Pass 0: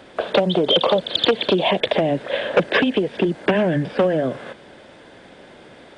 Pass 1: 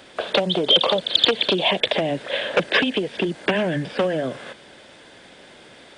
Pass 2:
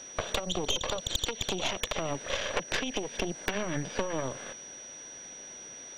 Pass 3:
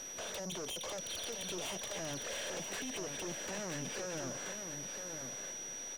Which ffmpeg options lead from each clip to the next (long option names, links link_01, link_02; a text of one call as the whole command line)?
ffmpeg -i in.wav -af "highshelf=frequency=2100:gain=11,volume=-4.5dB" out.wav
ffmpeg -i in.wav -af "acompressor=threshold=-23dB:ratio=10,aeval=exprs='0.398*(cos(1*acos(clip(val(0)/0.398,-1,1)))-cos(1*PI/2))+0.1*(cos(6*acos(clip(val(0)/0.398,-1,1)))-cos(6*PI/2))':channel_layout=same,aeval=exprs='val(0)+0.0141*sin(2*PI*5800*n/s)':channel_layout=same,volume=-6.5dB" out.wav
ffmpeg -i in.wav -af "aeval=exprs='(tanh(79.4*val(0)+0.5)-tanh(0.5))/79.4':channel_layout=same,aecho=1:1:981:0.473,volume=2dB" out.wav